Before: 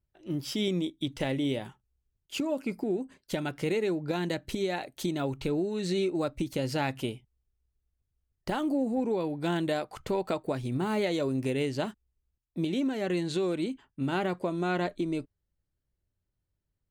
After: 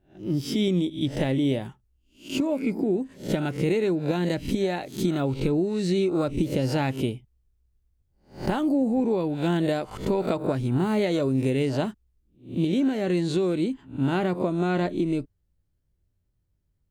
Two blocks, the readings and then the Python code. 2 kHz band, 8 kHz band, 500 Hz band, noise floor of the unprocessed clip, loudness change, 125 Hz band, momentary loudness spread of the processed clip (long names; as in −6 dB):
+2.0 dB, +2.0 dB, +4.5 dB, −83 dBFS, +5.5 dB, +8.0 dB, 6 LU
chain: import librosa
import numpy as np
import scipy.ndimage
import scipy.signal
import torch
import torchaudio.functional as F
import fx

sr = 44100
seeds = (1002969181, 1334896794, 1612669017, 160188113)

y = fx.spec_swells(x, sr, rise_s=0.36)
y = fx.low_shelf(y, sr, hz=400.0, db=8.5)